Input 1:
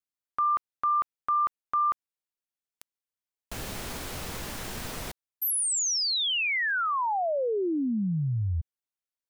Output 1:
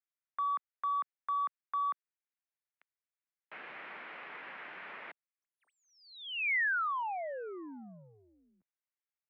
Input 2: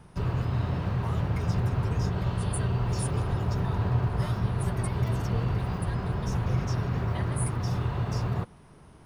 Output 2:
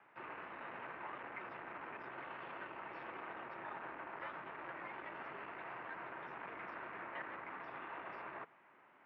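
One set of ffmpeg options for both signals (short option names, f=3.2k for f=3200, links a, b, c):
-af "asoftclip=type=tanh:threshold=-24.5dB,highpass=f=220:t=q:w=0.5412,highpass=f=220:t=q:w=1.307,lowpass=f=2.3k:t=q:w=0.5176,lowpass=f=2.3k:t=q:w=0.7071,lowpass=f=2.3k:t=q:w=1.932,afreqshift=-51,aderivative,volume=11.5dB"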